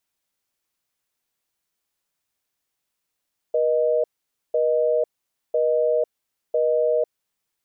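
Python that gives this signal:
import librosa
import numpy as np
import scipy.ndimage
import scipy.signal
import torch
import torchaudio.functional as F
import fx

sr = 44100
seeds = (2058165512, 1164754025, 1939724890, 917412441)

y = fx.call_progress(sr, length_s=3.97, kind='busy tone', level_db=-20.0)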